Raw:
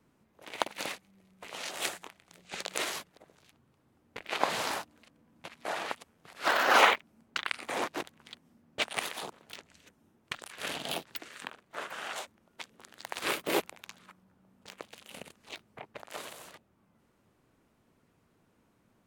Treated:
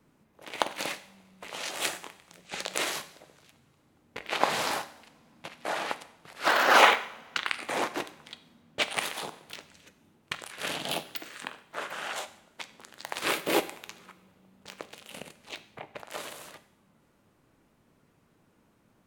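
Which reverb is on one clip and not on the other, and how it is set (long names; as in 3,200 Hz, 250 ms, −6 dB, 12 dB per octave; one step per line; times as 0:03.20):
coupled-rooms reverb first 0.68 s, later 2.9 s, from −22 dB, DRR 10.5 dB
level +3 dB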